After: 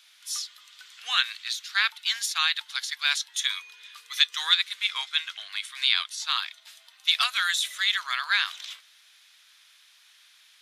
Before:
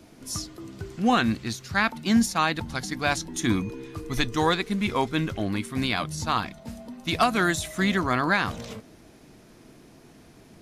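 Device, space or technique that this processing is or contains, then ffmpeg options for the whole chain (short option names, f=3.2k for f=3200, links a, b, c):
headphones lying on a table: -filter_complex "[0:a]asettb=1/sr,asplit=3[a][b][c];[a]atrim=end=4.864[d];[b]atrim=start=4.86:end=6.3,asetpts=PTS-STARTPTS,afade=t=in:d=0.004:c=qsin,afade=t=out:st=1.436:d=0.004:c=qsin,lowpass=11k[e];[c]atrim=start=6.296[f];[d][e]acrossfade=d=0.004:c1=hsin:c2=qsin[g];[g][f]acrossfade=d=0.004:c1=qsin:c2=hsin,highpass=f=1.4k:w=0.5412,highpass=f=1.4k:w=1.3066,equalizer=f=3.5k:t=o:w=0.6:g=11"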